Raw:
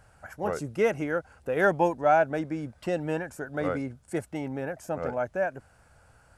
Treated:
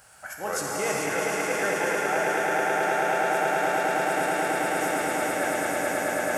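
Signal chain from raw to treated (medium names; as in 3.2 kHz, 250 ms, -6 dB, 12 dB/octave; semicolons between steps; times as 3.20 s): echo with a slow build-up 108 ms, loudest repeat 8, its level -4.5 dB; reverse; compression 6:1, threshold -28 dBFS, peak gain reduction 13.5 dB; reverse; tilt EQ +3.5 dB/octave; gated-style reverb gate 480 ms flat, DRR -2.5 dB; trim +3.5 dB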